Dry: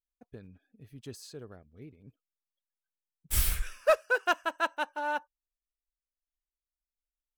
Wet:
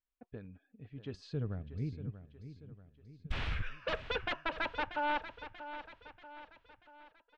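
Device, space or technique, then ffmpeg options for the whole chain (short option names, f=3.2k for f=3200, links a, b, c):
synthesiser wavefolder: -filter_complex "[0:a]aeval=exprs='0.0422*(abs(mod(val(0)/0.0422+3,4)-2)-1)':c=same,lowpass=f=3.2k:w=0.5412,lowpass=f=3.2k:w=1.3066,bandreject=f=370:w=12,asettb=1/sr,asplit=3[a][b][c];[a]atrim=end=1.144[d];[b]atrim=start=1.14:end=3.32,asetpts=PTS-STARTPTS,afade=t=in:d=0.004:c=qsin,afade=t=out:st=2.176:d=0.004:c=qsin,bass=f=250:g=15,treble=f=4k:g=12[e];[c]atrim=start=3.316[f];[d][e]acrossfade=d=0.004:c1=hsin:c2=qsin[g];[g][f]acrossfade=d=0.004:c1=qsin:c2=hsin,aecho=1:1:636|1272|1908|2544|3180:0.251|0.121|0.0579|0.0278|0.0133,volume=1dB"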